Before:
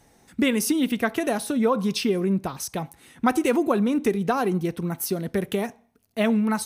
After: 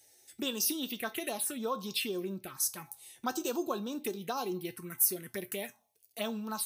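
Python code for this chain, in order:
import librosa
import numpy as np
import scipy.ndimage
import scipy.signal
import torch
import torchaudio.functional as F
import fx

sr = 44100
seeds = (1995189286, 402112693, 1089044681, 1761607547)

y = fx.env_phaser(x, sr, low_hz=180.0, high_hz=2100.0, full_db=-19.0)
y = fx.tilt_eq(y, sr, slope=3.5)
y = fx.comb_fb(y, sr, f0_hz=120.0, decay_s=0.2, harmonics='odd', damping=0.0, mix_pct=70)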